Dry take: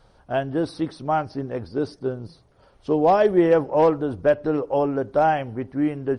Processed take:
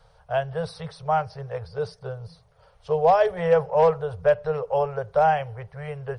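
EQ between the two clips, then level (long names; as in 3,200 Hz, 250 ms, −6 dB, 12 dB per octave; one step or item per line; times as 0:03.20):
Chebyshev band-stop filter 170–440 Hz, order 4
0.0 dB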